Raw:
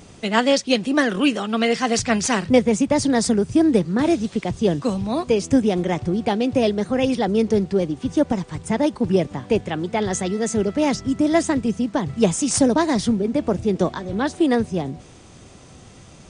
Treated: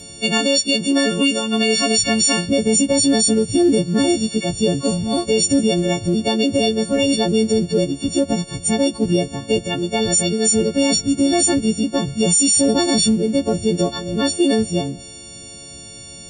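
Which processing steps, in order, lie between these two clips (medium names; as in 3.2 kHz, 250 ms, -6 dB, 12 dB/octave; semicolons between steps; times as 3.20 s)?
partials quantised in pitch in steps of 4 st; high-order bell 1.3 kHz -9.5 dB; peak limiter -11 dBFS, peak gain reduction 11.5 dB; trim +3.5 dB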